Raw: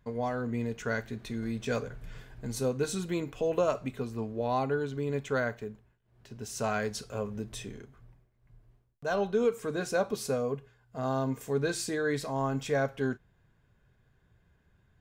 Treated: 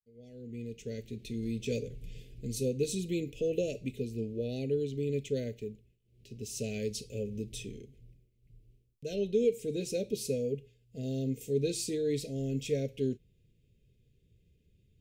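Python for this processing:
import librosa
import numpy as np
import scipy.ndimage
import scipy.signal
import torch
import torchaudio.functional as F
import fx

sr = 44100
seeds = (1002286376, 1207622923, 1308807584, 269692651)

y = fx.fade_in_head(x, sr, length_s=1.45)
y = scipy.signal.sosfilt(scipy.signal.cheby1(3, 1.0, [480.0, 2500.0], 'bandstop', fs=sr, output='sos'), y)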